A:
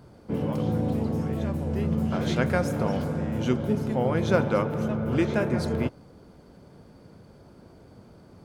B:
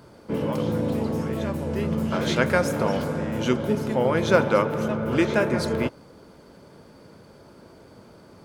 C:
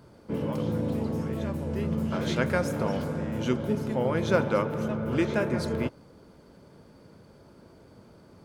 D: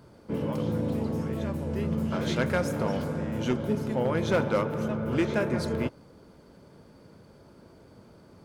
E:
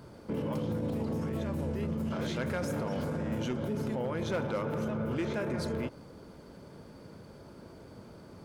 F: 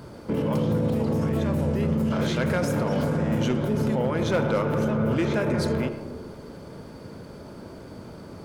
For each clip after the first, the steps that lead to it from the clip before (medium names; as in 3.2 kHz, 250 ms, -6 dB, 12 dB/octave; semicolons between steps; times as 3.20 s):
bass shelf 240 Hz -10.5 dB; band-stop 740 Hz, Q 12; trim +6.5 dB
bass shelf 260 Hz +5.5 dB; trim -6.5 dB
hard clipper -18 dBFS, distortion -20 dB
peak limiter -29 dBFS, peak gain reduction 11 dB; trim +3 dB
reverberation RT60 1.9 s, pre-delay 20 ms, DRR 9.5 dB; trim +8 dB